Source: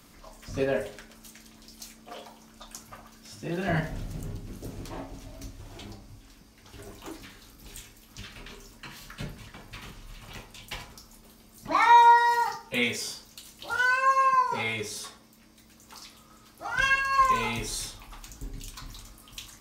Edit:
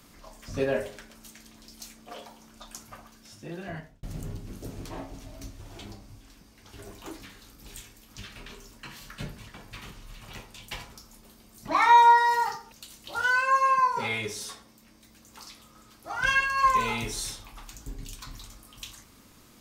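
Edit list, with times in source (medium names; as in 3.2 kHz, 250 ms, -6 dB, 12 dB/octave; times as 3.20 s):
2.95–4.03 s: fade out
12.72–13.27 s: delete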